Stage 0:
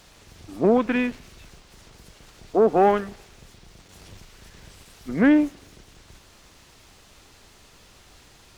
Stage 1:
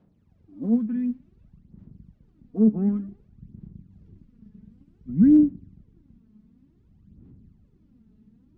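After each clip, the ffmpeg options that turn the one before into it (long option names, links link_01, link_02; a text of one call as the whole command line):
ffmpeg -i in.wav -af "bandpass=frequency=210:width_type=q:width=2:csg=0,aphaser=in_gain=1:out_gain=1:delay=4.7:decay=0.68:speed=0.55:type=sinusoidal,asubboost=boost=9.5:cutoff=210,volume=-7dB" out.wav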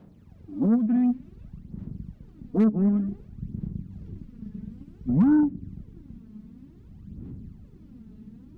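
ffmpeg -i in.wav -af "acompressor=threshold=-29dB:ratio=3,aeval=exprs='0.0891*(cos(1*acos(clip(val(0)/0.0891,-1,1)))-cos(1*PI/2))+0.00631*(cos(5*acos(clip(val(0)/0.0891,-1,1)))-cos(5*PI/2))':channel_layout=same,volume=8dB" out.wav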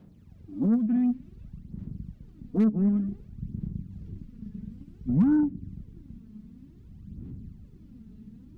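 ffmpeg -i in.wav -af "equalizer=frequency=780:width_type=o:width=2.7:gain=-6" out.wav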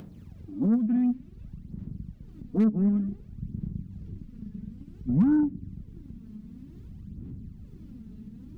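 ffmpeg -i in.wav -af "acompressor=mode=upward:threshold=-37dB:ratio=2.5" out.wav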